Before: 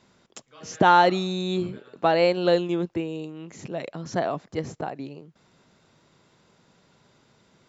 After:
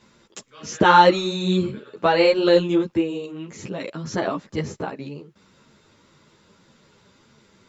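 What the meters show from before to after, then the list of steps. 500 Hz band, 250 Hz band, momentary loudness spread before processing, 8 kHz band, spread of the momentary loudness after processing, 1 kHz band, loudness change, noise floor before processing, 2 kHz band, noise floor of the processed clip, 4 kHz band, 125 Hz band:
+4.0 dB, +5.0 dB, 20 LU, can't be measured, 21 LU, +3.0 dB, +4.0 dB, −63 dBFS, +4.5 dB, −59 dBFS, +5.5 dB, +3.5 dB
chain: parametric band 720 Hz −9.5 dB 0.28 octaves
string-ensemble chorus
level +8 dB

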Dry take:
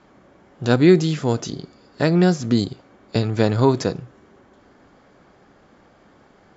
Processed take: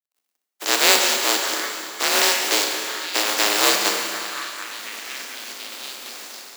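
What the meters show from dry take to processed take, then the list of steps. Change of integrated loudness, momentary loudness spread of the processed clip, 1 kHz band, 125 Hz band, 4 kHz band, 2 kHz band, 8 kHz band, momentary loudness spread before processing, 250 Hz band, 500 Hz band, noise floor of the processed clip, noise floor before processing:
+0.5 dB, 16 LU, +5.0 dB, below −35 dB, +14.0 dB, +10.0 dB, can't be measured, 14 LU, −14.5 dB, −6.5 dB, −81 dBFS, −54 dBFS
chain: compressing power law on the bin magnitudes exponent 0.17
in parallel at −1 dB: brickwall limiter −7.5 dBFS, peak gain reduction 9.5 dB
on the sum: automatic gain control gain up to 13.5 dB
on a send: echo through a band-pass that steps 734 ms, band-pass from 1,200 Hz, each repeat 0.7 octaves, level −6 dB
on the sum: dead-zone distortion −38 dBFS
four-comb reverb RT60 2.6 s, combs from 26 ms, DRR 3 dB
frequency shifter +200 Hz
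level −1.5 dB

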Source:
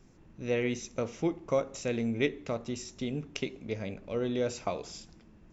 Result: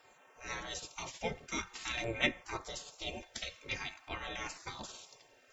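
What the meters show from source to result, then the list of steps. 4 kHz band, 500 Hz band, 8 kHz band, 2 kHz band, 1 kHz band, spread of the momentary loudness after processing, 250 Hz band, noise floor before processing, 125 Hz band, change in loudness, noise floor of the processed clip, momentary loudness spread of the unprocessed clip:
+3.5 dB, −13.0 dB, can't be measured, +2.5 dB, −1.5 dB, 12 LU, −13.5 dB, −58 dBFS, −11.0 dB, −6.0 dB, −64 dBFS, 8 LU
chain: stiff-string resonator 66 Hz, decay 0.26 s, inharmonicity 0.03
gate on every frequency bin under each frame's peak −20 dB weak
auto-filter notch saw down 0.49 Hz 400–6,400 Hz
level +17 dB

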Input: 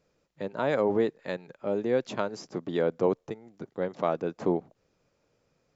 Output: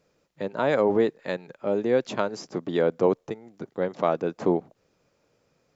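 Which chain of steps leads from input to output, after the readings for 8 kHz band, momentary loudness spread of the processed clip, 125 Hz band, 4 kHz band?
can't be measured, 11 LU, +2.5 dB, +4.0 dB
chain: low-shelf EQ 75 Hz −7 dB
level +4 dB

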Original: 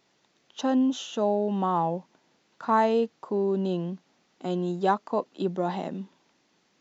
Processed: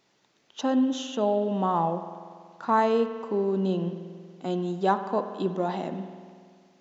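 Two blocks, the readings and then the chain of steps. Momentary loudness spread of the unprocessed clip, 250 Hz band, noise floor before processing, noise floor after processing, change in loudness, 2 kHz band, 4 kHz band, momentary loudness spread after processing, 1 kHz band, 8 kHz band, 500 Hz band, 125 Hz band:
13 LU, 0.0 dB, −69 dBFS, −68 dBFS, +0.5 dB, +0.5 dB, +0.5 dB, 16 LU, +0.5 dB, can't be measured, +0.5 dB, +0.5 dB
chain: spring reverb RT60 2 s, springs 47 ms, chirp 75 ms, DRR 9 dB

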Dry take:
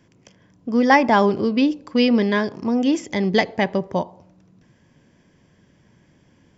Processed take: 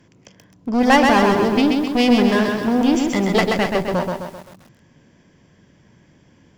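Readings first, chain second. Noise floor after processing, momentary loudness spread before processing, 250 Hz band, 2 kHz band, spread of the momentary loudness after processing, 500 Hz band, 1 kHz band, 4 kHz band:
−55 dBFS, 10 LU, +2.5 dB, +2.0 dB, 10 LU, +2.0 dB, +2.0 dB, +4.0 dB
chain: asymmetric clip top −22 dBFS
feedback echo at a low word length 130 ms, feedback 55%, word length 8 bits, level −3.5 dB
level +3.5 dB

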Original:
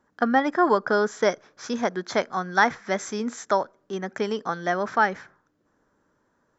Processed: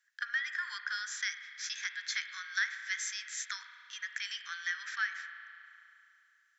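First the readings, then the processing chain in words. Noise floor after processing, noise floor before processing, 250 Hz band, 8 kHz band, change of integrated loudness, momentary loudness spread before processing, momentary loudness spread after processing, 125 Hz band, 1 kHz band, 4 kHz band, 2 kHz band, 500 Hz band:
−70 dBFS, −70 dBFS, below −40 dB, can't be measured, −11.5 dB, 11 LU, 11 LU, below −40 dB, −23.5 dB, −1.0 dB, −5.5 dB, below −40 dB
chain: elliptic high-pass filter 1,700 Hz, stop band 60 dB
downward compressor 2.5 to 1, threshold −34 dBFS, peak gain reduction 10 dB
spring reverb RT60 2.8 s, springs 32 ms, chirp 35 ms, DRR 7.5 dB
level +1.5 dB

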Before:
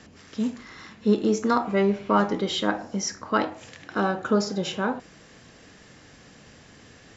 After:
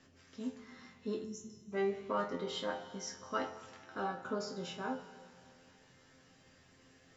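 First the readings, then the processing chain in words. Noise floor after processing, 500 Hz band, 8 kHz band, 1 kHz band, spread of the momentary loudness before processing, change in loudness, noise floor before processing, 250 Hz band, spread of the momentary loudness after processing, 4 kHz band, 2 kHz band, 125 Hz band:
−64 dBFS, −12.5 dB, can't be measured, −13.5 dB, 11 LU, −14.5 dB, −51 dBFS, −17.5 dB, 17 LU, −13.5 dB, −13.5 dB, −17.5 dB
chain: time-frequency box erased 0:01.24–0:01.72, 220–5,200 Hz
resonators tuned to a chord F2 fifth, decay 0.22 s
four-comb reverb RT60 2.5 s, combs from 25 ms, DRR 12 dB
level −4 dB

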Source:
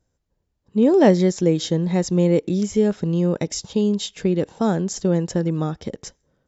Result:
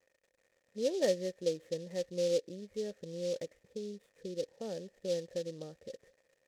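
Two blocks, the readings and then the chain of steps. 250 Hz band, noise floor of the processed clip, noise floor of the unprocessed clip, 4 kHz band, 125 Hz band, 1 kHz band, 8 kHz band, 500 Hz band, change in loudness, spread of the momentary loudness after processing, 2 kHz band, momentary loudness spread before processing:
−24.5 dB, −77 dBFS, −74 dBFS, −13.0 dB, −26.5 dB, below −20 dB, can't be measured, −13.0 dB, −17.0 dB, 15 LU, −16.5 dB, 10 LU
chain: gain on a spectral selection 0:03.64–0:04.48, 520–3,300 Hz −7 dB
surface crackle 150 per second −30 dBFS
formant resonators in series e
short delay modulated by noise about 4,400 Hz, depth 0.051 ms
level −7 dB

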